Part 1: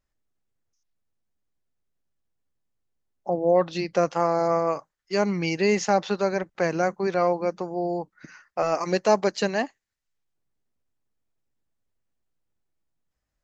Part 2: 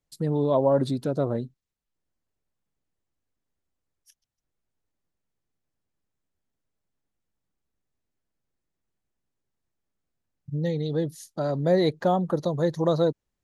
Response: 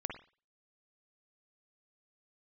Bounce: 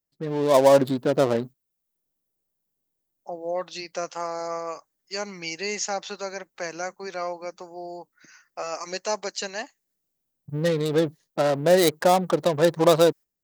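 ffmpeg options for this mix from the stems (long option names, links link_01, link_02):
-filter_complex "[0:a]volume=-3.5dB[link_01];[1:a]lowpass=frequency=3900:poles=1,adynamicsmooth=sensitivity=6.5:basefreq=570,volume=1.5dB,asplit=2[link_02][link_03];[link_03]apad=whole_len=592592[link_04];[link_01][link_04]sidechaingate=range=-11dB:threshold=-38dB:ratio=16:detection=peak[link_05];[link_05][link_02]amix=inputs=2:normalize=0,aemphasis=mode=production:type=riaa,dynaudnorm=framelen=190:gausssize=5:maxgain=8dB"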